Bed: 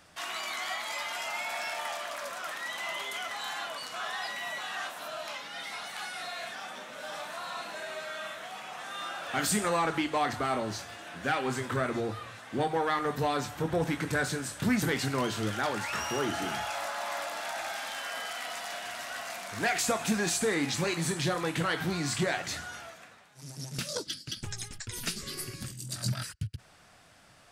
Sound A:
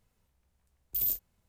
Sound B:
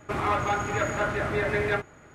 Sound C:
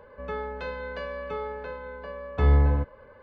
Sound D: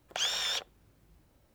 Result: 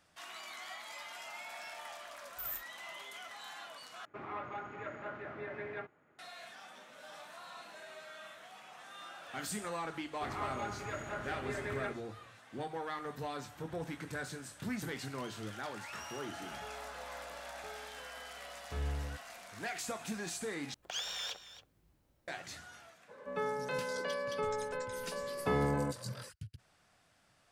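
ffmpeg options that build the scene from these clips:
-filter_complex "[2:a]asplit=2[a][b];[3:a]asplit=2[c][d];[0:a]volume=-11.5dB[e];[a]highpass=160,lowpass=2.7k[f];[4:a]aecho=1:1:274:0.2[g];[d]highpass=f=140:w=0.5412,highpass=f=140:w=1.3066[h];[e]asplit=3[i][j][k];[i]atrim=end=4.054[l];[f]atrim=end=2.14,asetpts=PTS-STARTPTS,volume=-16dB[m];[j]atrim=start=6.186:end=20.744[n];[g]atrim=end=1.54,asetpts=PTS-STARTPTS,volume=-8dB[o];[k]atrim=start=22.276[p];[1:a]atrim=end=1.48,asetpts=PTS-STARTPTS,volume=-11.5dB,afade=t=in:d=0.004:c=hsin,afade=t=out:st=1.476:d=0.004:c=hsin,adelay=1440[q];[b]atrim=end=2.14,asetpts=PTS-STARTPTS,volume=-14dB,afade=t=in:d=0.004:c=hsin,afade=t=out:st=2.136:d=0.004:c=hsin,adelay=10120[r];[c]atrim=end=3.22,asetpts=PTS-STARTPTS,volume=-18dB,afade=t=in:d=0.004:c=hsin,afade=t=out:st=3.216:d=0.004:c=hsin,adelay=16330[s];[h]atrim=end=3.22,asetpts=PTS-STARTPTS,volume=-2.5dB,afade=t=in:d=0.02,afade=t=out:st=3.2:d=0.02,adelay=1017828S[t];[l][m]acrossfade=d=0.004:c1=hsin:c2=hsin[u];[u][n]acrossfade=d=0.004:c1=hsin:c2=hsin[v];[v][o]acrossfade=d=0.004:c1=hsin:c2=hsin[w];[w][p]acrossfade=d=0.004:c1=hsin:c2=hsin[x];[x][q][r][s][t]amix=inputs=5:normalize=0"

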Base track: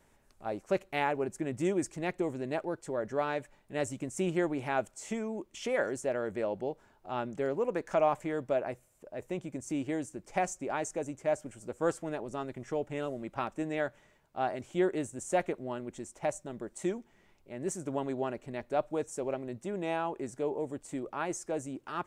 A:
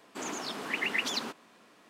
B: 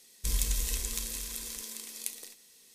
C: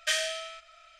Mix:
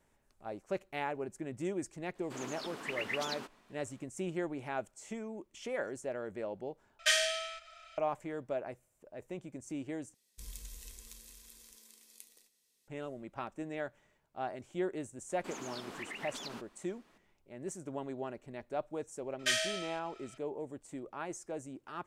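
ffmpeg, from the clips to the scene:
-filter_complex "[1:a]asplit=2[a][b];[3:a]asplit=2[c][d];[0:a]volume=-6.5dB[e];[b]acompressor=threshold=-33dB:ratio=4:attack=6.9:release=151:knee=1:detection=peak[f];[e]asplit=3[g][h][i];[g]atrim=end=6.994[j];[c]atrim=end=0.99[k];[h]atrim=start=7.976:end=10.144[l];[2:a]atrim=end=2.74,asetpts=PTS-STARTPTS,volume=-17.5dB[m];[i]atrim=start=12.876[n];[a]atrim=end=1.89,asetpts=PTS-STARTPTS,volume=-7.5dB,afade=t=in:d=0.004:c=hsin,afade=t=out:st=1.886:d=0.004:c=hsin,adelay=2150[o];[f]atrim=end=1.89,asetpts=PTS-STARTPTS,volume=-8dB,afade=t=in:d=0.004:c=hsin,afade=t=out:st=1.886:d=0.004:c=hsin,adelay=15290[p];[d]atrim=end=0.99,asetpts=PTS-STARTPTS,volume=-3dB,afade=t=in:d=0.004:c=hsin,afade=t=out:st=0.986:d=0.004:c=hsin,adelay=19390[q];[j][k]acrossfade=d=0.004:c1=hsin:c2=hsin[r];[r][l]acrossfade=d=0.004:c1=hsin:c2=hsin[s];[s][m]acrossfade=d=0.004:c1=hsin:c2=hsin[t];[t][n]acrossfade=d=0.004:c1=hsin:c2=hsin[u];[u][o][p][q]amix=inputs=4:normalize=0"

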